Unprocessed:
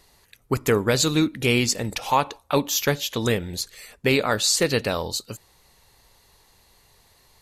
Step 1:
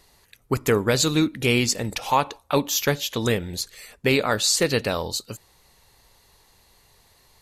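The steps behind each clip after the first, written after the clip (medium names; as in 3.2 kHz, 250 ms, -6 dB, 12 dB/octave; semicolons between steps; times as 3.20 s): no audible change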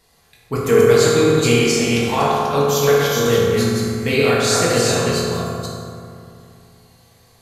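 chunks repeated in reverse 246 ms, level -2.5 dB; reverberation RT60 2.5 s, pre-delay 3 ms, DRR -7.5 dB; trim -4 dB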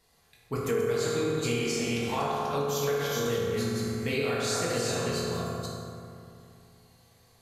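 compression 3:1, threshold -18 dBFS, peak gain reduction 8 dB; trim -8.5 dB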